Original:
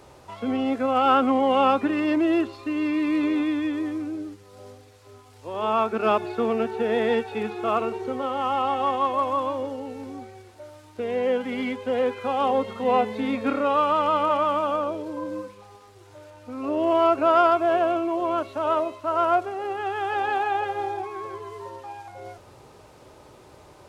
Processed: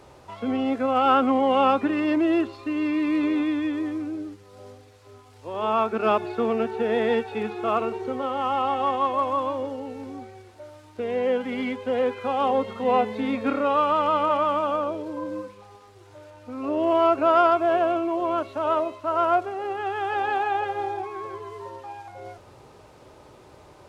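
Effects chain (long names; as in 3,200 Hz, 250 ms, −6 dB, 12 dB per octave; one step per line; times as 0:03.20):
high-shelf EQ 6,600 Hz −5 dB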